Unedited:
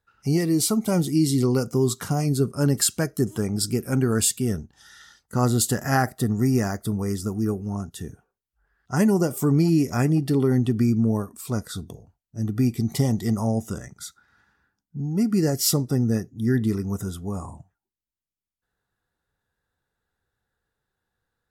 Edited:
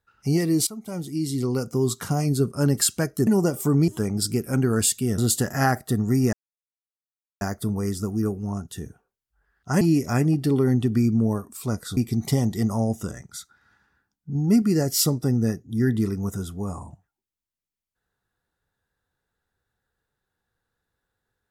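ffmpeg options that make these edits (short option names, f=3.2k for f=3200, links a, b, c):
-filter_complex "[0:a]asplit=10[a][b][c][d][e][f][g][h][i][j];[a]atrim=end=0.67,asetpts=PTS-STARTPTS,afade=t=out:st=0.666:d=0.004:c=hsin:silence=0.141254[k];[b]atrim=start=0.67:end=3.272,asetpts=PTS-STARTPTS,afade=t=in:d=1.4:silence=0.141254[l];[c]atrim=start=9.038:end=9.652[m];[d]atrim=start=3.268:end=4.572[n];[e]atrim=start=5.488:end=6.64,asetpts=PTS-STARTPTS,afade=t=out:st=1.148:d=0.004:c=hsin,apad=pad_dur=1.08[o];[f]atrim=start=6.64:end=9.042,asetpts=PTS-STARTPTS,afade=t=in:d=0.004:c=hsin[p];[g]atrim=start=9.648:end=11.812[q];[h]atrim=start=12.638:end=15.022[r];[i]atrim=start=15.018:end=15.292,asetpts=PTS-STARTPTS,volume=4dB[s];[j]atrim=start=15.288[t];[k][l]concat=n=2:v=0:a=1[u];[u][m]acrossfade=d=0.004:c1=hsin:c2=hsin[v];[v][n]acrossfade=d=0.004:c1=hsin:c2=hsin[w];[o][p]concat=n=2:v=0:a=1[x];[w][x]acrossfade=d=0.004:c1=hsin:c2=hsin[y];[y][q]acrossfade=d=0.004:c1=hsin:c2=hsin[z];[z][r]acrossfade=d=0.004:c1=hsin:c2=hsin[aa];[aa][s]acrossfade=d=0.004:c1=hsin:c2=hsin[ab];[ab][t]acrossfade=d=0.004:c1=hsin:c2=hsin"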